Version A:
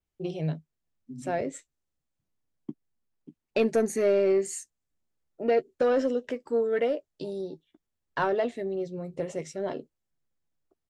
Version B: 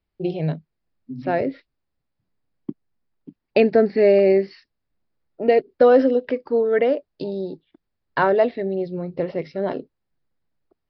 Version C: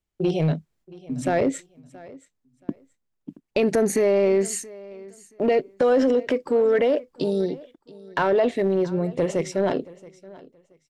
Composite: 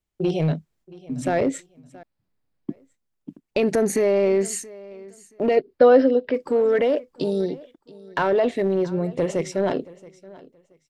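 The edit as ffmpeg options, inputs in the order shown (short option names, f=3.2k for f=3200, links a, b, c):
-filter_complex "[1:a]asplit=2[a][b];[2:a]asplit=3[c][d][e];[c]atrim=end=2.032[f];[a]atrim=start=2.028:end=2.702[g];[d]atrim=start=2.698:end=5.572[h];[b]atrim=start=5.568:end=6.342[i];[e]atrim=start=6.338[j];[f][g]acrossfade=d=0.004:c1=hsin:c2=hsin[k];[k][h]acrossfade=d=0.004:c1=hsin:c2=hsin[l];[l][i]acrossfade=d=0.004:c1=hsin:c2=hsin[m];[m][j]acrossfade=d=0.004:c1=hsin:c2=hsin"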